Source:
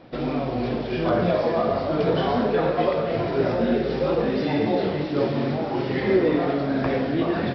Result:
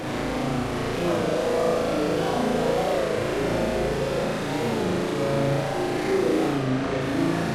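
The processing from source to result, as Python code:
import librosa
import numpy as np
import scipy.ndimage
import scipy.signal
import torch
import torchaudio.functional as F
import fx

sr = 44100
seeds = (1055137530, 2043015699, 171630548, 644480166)

y = fx.delta_mod(x, sr, bps=64000, step_db=-20.0)
y = fx.high_shelf(y, sr, hz=3400.0, db=-9.5)
y = 10.0 ** (-16.0 / 20.0) * np.tanh(y / 10.0 ** (-16.0 / 20.0))
y = fx.air_absorb(y, sr, metres=57.0, at=(6.49, 7.01))
y = fx.room_flutter(y, sr, wall_m=6.2, rt60_s=1.3)
y = fx.record_warp(y, sr, rpm=33.33, depth_cents=100.0)
y = y * librosa.db_to_amplitude(-5.0)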